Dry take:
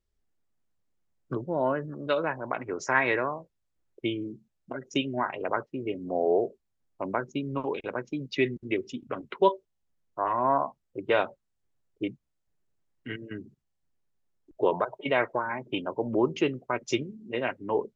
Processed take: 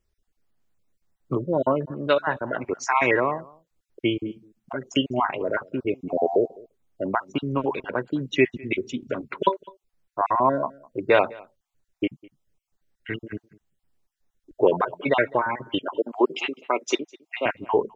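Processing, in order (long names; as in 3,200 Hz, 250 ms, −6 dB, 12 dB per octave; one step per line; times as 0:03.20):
time-frequency cells dropped at random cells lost 30%
0:15.81–0:17.46: high-pass filter 280 Hz 24 dB per octave
single-tap delay 205 ms −24 dB
level +6.5 dB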